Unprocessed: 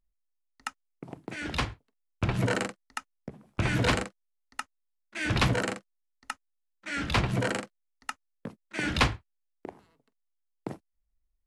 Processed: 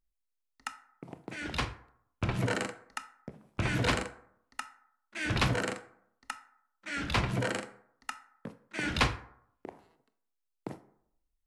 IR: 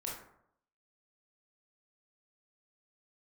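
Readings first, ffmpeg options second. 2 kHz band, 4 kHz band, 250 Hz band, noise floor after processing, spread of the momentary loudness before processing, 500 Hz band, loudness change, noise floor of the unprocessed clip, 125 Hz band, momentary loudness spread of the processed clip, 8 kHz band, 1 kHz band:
−2.5 dB, −2.5 dB, −3.5 dB, −82 dBFS, 21 LU, −3.0 dB, −3.0 dB, −79 dBFS, −3.5 dB, 21 LU, −2.5 dB, −2.5 dB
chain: -filter_complex "[0:a]asplit=2[link_01][link_02];[1:a]atrim=start_sample=2205,lowshelf=frequency=390:gain=-8[link_03];[link_02][link_03]afir=irnorm=-1:irlink=0,volume=-7.5dB[link_04];[link_01][link_04]amix=inputs=2:normalize=0,volume=-4.5dB"

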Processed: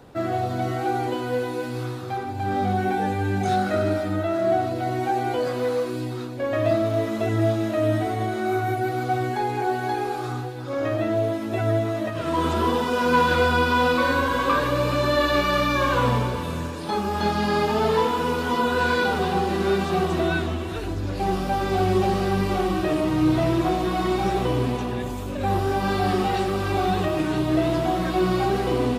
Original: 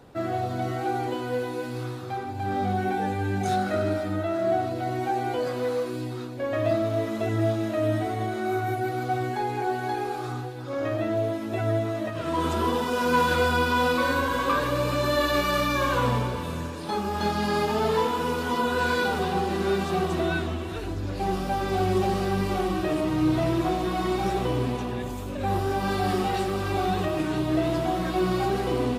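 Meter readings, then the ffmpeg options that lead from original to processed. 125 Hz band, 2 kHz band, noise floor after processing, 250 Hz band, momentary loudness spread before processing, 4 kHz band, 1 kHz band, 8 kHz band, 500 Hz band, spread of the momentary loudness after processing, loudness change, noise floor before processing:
+3.0 dB, +3.0 dB, −30 dBFS, +3.0 dB, 7 LU, +2.5 dB, +3.0 dB, +0.5 dB, +3.0 dB, 7 LU, +3.0 dB, −33 dBFS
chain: -filter_complex "[0:a]acrossover=split=5300[link_01][link_02];[link_02]acompressor=threshold=-47dB:ratio=4:attack=1:release=60[link_03];[link_01][link_03]amix=inputs=2:normalize=0,volume=3dB"

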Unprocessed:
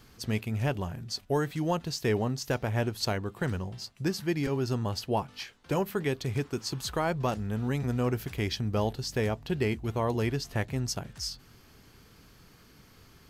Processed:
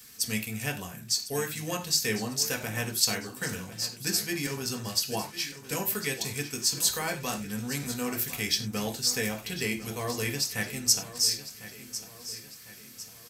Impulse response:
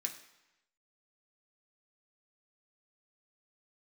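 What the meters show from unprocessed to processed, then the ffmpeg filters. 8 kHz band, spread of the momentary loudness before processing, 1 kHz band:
+14.0 dB, 5 LU, −4.0 dB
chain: -filter_complex "[0:a]crystalizer=i=5:c=0,aecho=1:1:1052|2104|3156|4208:0.2|0.0918|0.0422|0.0194[link_01];[1:a]atrim=start_sample=2205,afade=type=out:start_time=0.15:duration=0.01,atrim=end_sample=7056[link_02];[link_01][link_02]afir=irnorm=-1:irlink=0,volume=-2dB"

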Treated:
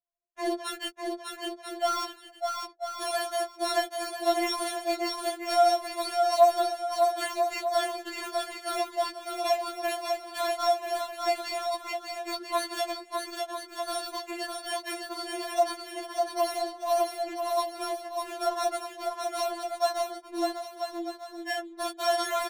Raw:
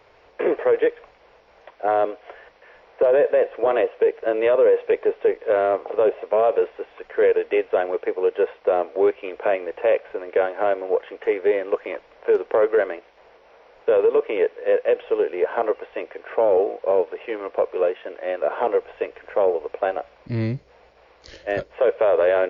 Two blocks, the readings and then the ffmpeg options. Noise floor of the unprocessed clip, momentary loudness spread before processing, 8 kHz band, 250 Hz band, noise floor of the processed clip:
−54 dBFS, 10 LU, can't be measured, −5.5 dB, −50 dBFS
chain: -filter_complex "[0:a]bandreject=frequency=50:width_type=h:width=6,bandreject=frequency=100:width_type=h:width=6,bandreject=frequency=150:width_type=h:width=6,bandreject=frequency=200:width_type=h:width=6,bandreject=frequency=250:width_type=h:width=6,bandreject=frequency=300:width_type=h:width=6,bandreject=frequency=350:width_type=h:width=6,anlmdn=100,highpass=frequency=100:poles=1,acrossover=split=420 2900:gain=0.141 1 0.251[link_01][link_02][link_03];[link_01][link_02][link_03]amix=inputs=3:normalize=0,acrossover=split=230|3000[link_04][link_05][link_06];[link_04]acompressor=threshold=-23dB:ratio=2.5[link_07];[link_07][link_05][link_06]amix=inputs=3:normalize=0,acrusher=samples=9:mix=1:aa=0.000001,adynamicsmooth=sensitivity=7:basefreq=640,asplit=2[link_08][link_09];[link_09]aecho=0:1:600|990|1244|1408|1515:0.631|0.398|0.251|0.158|0.1[link_10];[link_08][link_10]amix=inputs=2:normalize=0,afftfilt=real='re*4*eq(mod(b,16),0)':imag='im*4*eq(mod(b,16),0)':win_size=2048:overlap=0.75"

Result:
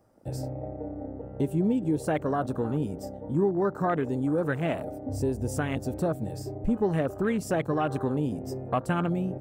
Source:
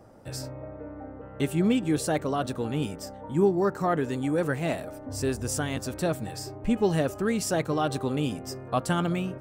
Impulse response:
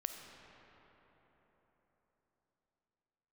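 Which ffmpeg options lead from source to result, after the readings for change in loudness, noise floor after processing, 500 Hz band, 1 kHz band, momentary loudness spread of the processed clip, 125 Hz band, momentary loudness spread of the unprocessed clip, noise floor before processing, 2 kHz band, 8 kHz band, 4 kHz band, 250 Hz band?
−1.0 dB, −42 dBFS, −1.0 dB, −1.0 dB, 10 LU, +0.5 dB, 13 LU, −43 dBFS, −2.0 dB, −9.5 dB, −9.5 dB, −0.5 dB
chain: -af "afwtdn=0.0178,highshelf=frequency=7800:gain=8.5,acompressor=threshold=-31dB:ratio=2,volume=4.5dB"

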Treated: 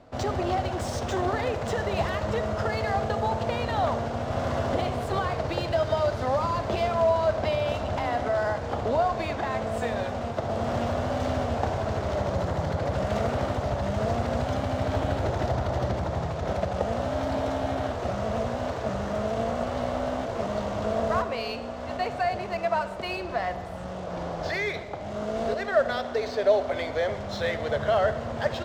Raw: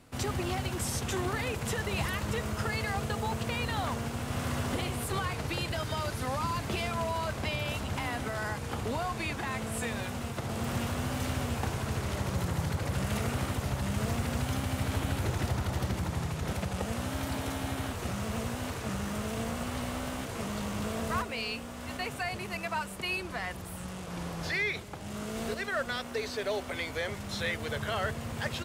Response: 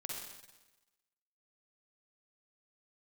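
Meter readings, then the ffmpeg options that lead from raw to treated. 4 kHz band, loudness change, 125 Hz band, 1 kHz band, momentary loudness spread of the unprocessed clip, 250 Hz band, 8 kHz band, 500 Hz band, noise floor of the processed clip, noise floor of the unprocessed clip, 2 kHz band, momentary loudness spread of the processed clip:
−0.5 dB, +5.5 dB, +2.0 dB, +8.0 dB, 4 LU, +3.0 dB, −6.5 dB, +11.5 dB, −35 dBFS, −41 dBFS, +1.0 dB, 6 LU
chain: -filter_complex "[0:a]asplit=2[link_01][link_02];[1:a]atrim=start_sample=2205[link_03];[link_02][link_03]afir=irnorm=-1:irlink=0,volume=-7dB[link_04];[link_01][link_04]amix=inputs=2:normalize=0,adynamicsmooth=sensitivity=7:basefreq=5700,equalizer=frequency=160:width_type=o:width=0.67:gain=-3,equalizer=frequency=630:width_type=o:width=0.67:gain=12,equalizer=frequency=2500:width_type=o:width=0.67:gain=-5,equalizer=frequency=10000:width_type=o:width=0.67:gain=-11,volume=1dB"

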